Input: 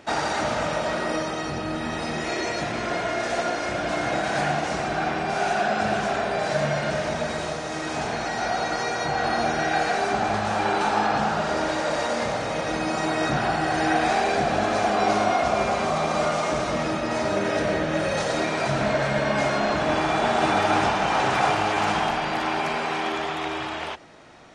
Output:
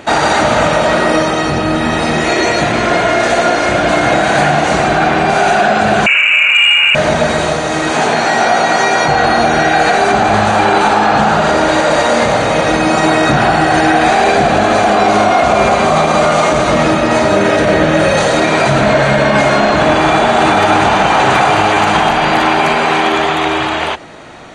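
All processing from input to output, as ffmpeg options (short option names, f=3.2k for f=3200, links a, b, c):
-filter_complex "[0:a]asettb=1/sr,asplit=3[a][b][c];[a]atrim=end=6.064[d];[b]atrim=start=6.06:end=6.95,asetpts=PTS-STARTPTS,afade=t=in:d=0.004:c=qsin,afade=t=out:st=0.886:d=0.004:c=qsin,tiltshelf=f=1.1k:g=9,lowpass=f=2.6k:t=q:w=0.5098,lowpass=f=2.6k:t=q:w=0.6013,lowpass=f=2.6k:t=q:w=0.9,lowpass=f=2.6k:t=q:w=2.563,afreqshift=-3000[e];[c]atrim=start=6.946[f];[d][e]acrossfade=d=0.004:c1=hsin:c2=qsin[g];[g][f]acrossfade=d=0.004:c1=qsin:c2=hsin,asettb=1/sr,asplit=3[h][i][j];[h]atrim=end=7.914[k];[i]atrim=start=7.91:end=9.08,asetpts=PTS-STARTPTS,afade=t=in:d=0.004:c=qsin,afade=t=out:st=1.166:d=0.004:c=qsin,highpass=180,asplit=2[l][m];[m]adelay=18,volume=-4.5dB[n];[l][n]amix=inputs=2:normalize=0,atrim=end_sample=51597[o];[j]atrim=start=9.076[p];[k][o]acrossfade=d=0.004:c1=hsin:c2=qsin[q];[q][p]acrossfade=d=0.004:c1=qsin:c2=hsin,bandreject=f=5.3k:w=5.4,acontrast=81,alimiter=level_in=9dB:limit=-1dB:release=50:level=0:latency=1,volume=-1dB"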